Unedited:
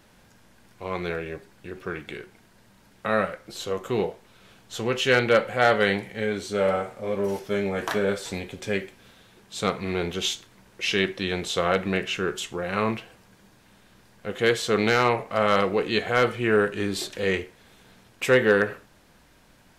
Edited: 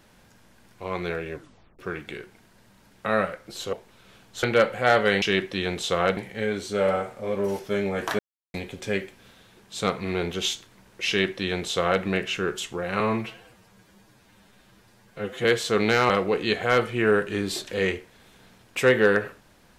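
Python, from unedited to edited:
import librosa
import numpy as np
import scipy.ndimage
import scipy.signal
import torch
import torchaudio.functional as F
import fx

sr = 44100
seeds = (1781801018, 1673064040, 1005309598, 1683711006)

y = fx.edit(x, sr, fx.tape_stop(start_s=1.34, length_s=0.45),
    fx.cut(start_s=3.73, length_s=0.36),
    fx.cut(start_s=4.79, length_s=0.39),
    fx.silence(start_s=7.99, length_s=0.35),
    fx.duplicate(start_s=10.88, length_s=0.95, to_s=5.97),
    fx.stretch_span(start_s=12.8, length_s=1.63, factor=1.5),
    fx.cut(start_s=15.08, length_s=0.47), tone=tone)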